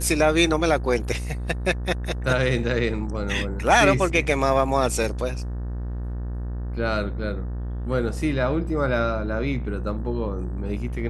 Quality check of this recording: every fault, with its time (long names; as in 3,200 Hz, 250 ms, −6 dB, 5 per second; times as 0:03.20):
mains buzz 60 Hz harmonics 31 −29 dBFS